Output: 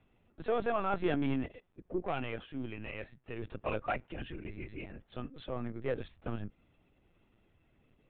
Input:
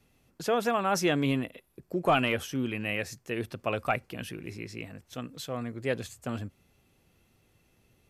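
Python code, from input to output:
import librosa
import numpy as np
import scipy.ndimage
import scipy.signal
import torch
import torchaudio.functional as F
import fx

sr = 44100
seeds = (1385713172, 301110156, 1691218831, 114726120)

y = 10.0 ** (-22.0 / 20.0) * np.tanh(x / 10.0 ** (-22.0 / 20.0))
y = fx.comb_fb(y, sr, f0_hz=390.0, decay_s=0.16, harmonics='all', damping=0.0, mix_pct=50, at=(2.0, 3.42))
y = fx.lpc_vocoder(y, sr, seeds[0], excitation='pitch_kept', order=16)
y = fx.lowpass(y, sr, hz=2400.0, slope=6)
y = F.gain(torch.from_numpy(y), -2.0).numpy()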